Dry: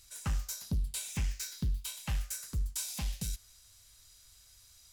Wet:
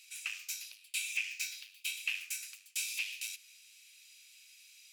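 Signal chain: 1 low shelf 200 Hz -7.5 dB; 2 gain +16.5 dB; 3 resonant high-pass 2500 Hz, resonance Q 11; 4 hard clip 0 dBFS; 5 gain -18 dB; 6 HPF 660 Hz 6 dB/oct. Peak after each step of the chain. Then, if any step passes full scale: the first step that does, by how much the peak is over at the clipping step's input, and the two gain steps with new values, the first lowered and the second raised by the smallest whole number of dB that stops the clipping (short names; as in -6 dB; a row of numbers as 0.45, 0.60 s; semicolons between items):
-26.0, -9.5, -2.5, -2.5, -20.5, -20.5 dBFS; no overload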